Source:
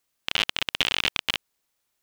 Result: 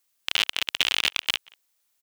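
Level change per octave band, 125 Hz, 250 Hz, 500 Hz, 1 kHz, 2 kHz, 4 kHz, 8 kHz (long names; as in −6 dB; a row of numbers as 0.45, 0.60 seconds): −8.0, −6.0, −4.0, −2.0, +0.5, +1.5, +3.5 decibels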